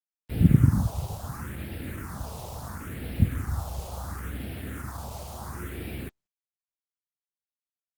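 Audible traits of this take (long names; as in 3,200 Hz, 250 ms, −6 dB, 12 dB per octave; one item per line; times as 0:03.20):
a quantiser's noise floor 6 bits, dither none
phaser sweep stages 4, 0.72 Hz, lowest notch 280–1,100 Hz
Opus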